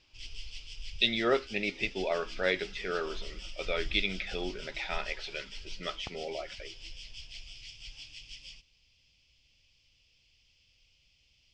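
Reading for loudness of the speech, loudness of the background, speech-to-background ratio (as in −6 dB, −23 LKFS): −33.0 LKFS, −45.5 LKFS, 12.5 dB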